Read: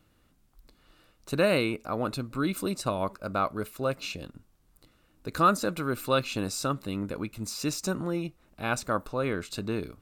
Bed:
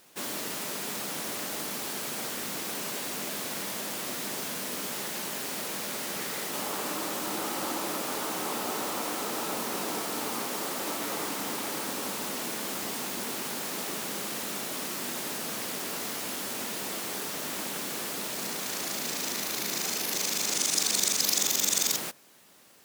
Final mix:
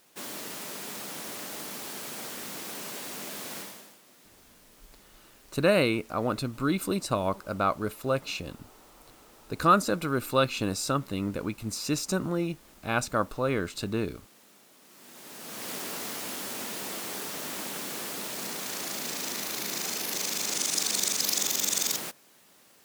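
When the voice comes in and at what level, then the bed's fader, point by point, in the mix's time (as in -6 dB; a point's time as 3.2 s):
4.25 s, +1.5 dB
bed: 3.59 s -4 dB
4.01 s -23 dB
14.8 s -23 dB
15.71 s -1.5 dB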